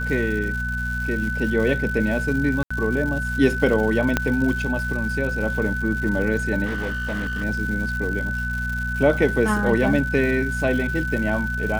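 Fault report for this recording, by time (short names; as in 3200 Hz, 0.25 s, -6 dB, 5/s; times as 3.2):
crackle 280/s -30 dBFS
hum 60 Hz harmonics 4 -28 dBFS
tone 1500 Hz -26 dBFS
2.63–2.71 gap 75 ms
4.17 pop -5 dBFS
6.65–7.44 clipped -22.5 dBFS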